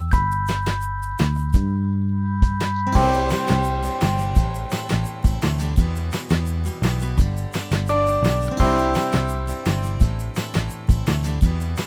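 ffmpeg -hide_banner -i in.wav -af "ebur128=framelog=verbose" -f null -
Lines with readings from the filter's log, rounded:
Integrated loudness:
  I:         -21.6 LUFS
  Threshold: -31.6 LUFS
Loudness range:
  LRA:         1.6 LU
  Threshold: -41.5 LUFS
  LRA low:   -22.5 LUFS
  LRA high:  -20.9 LUFS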